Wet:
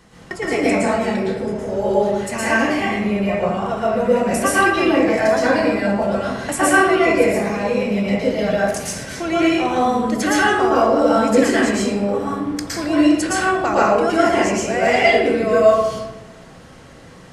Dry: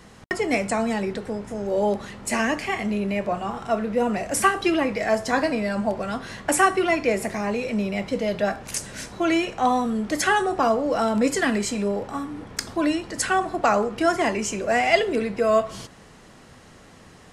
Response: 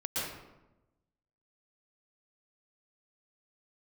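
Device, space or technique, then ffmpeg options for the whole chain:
bathroom: -filter_complex "[1:a]atrim=start_sample=2205[s0];[0:a][s0]afir=irnorm=-1:irlink=0"

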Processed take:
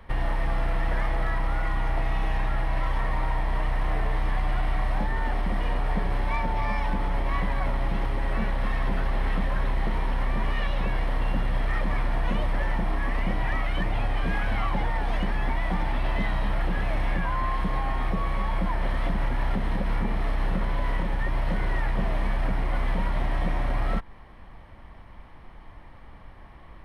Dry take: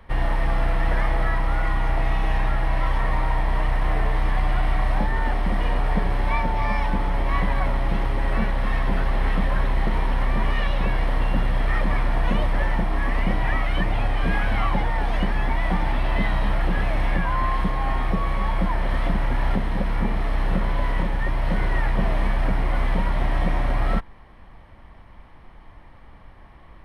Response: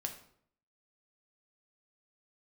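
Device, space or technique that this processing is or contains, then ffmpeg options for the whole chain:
clipper into limiter: -af "asoftclip=type=hard:threshold=0.224,alimiter=limit=0.133:level=0:latency=1:release=147"

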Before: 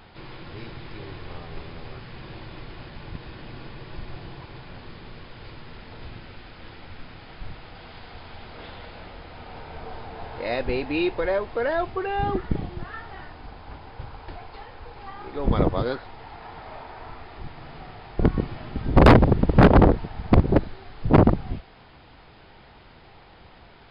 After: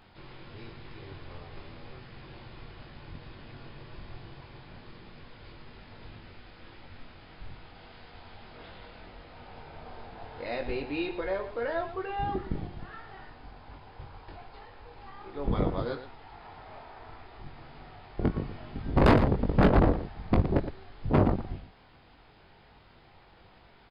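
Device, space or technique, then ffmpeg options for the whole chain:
slapback doubling: -filter_complex "[0:a]asplit=3[s0][s1][s2];[s1]adelay=21,volume=0.562[s3];[s2]adelay=115,volume=0.282[s4];[s0][s3][s4]amix=inputs=3:normalize=0,volume=0.376"

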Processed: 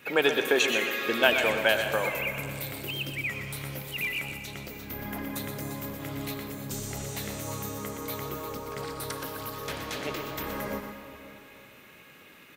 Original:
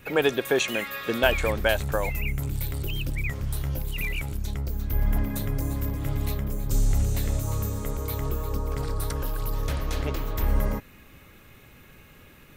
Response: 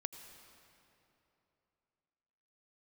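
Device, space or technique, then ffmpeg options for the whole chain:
PA in a hall: -filter_complex "[0:a]highpass=200,equalizer=f=2700:t=o:w=2.2:g=4.5,aecho=1:1:123:0.355[s0];[1:a]atrim=start_sample=2205[s1];[s0][s1]afir=irnorm=-1:irlink=0"

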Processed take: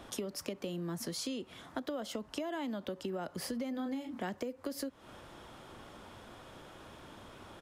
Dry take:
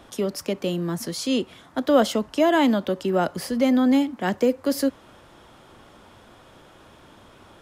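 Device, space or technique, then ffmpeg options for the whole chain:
serial compression, leveller first: -filter_complex "[0:a]asplit=3[s0][s1][s2];[s0]afade=t=out:st=3.73:d=0.02[s3];[s1]asplit=2[s4][s5];[s5]adelay=30,volume=0.501[s6];[s4][s6]amix=inputs=2:normalize=0,afade=t=in:st=3.73:d=0.02,afade=t=out:st=4.19:d=0.02[s7];[s2]afade=t=in:st=4.19:d=0.02[s8];[s3][s7][s8]amix=inputs=3:normalize=0,acompressor=threshold=0.0794:ratio=3,acompressor=threshold=0.02:ratio=6,volume=0.794"

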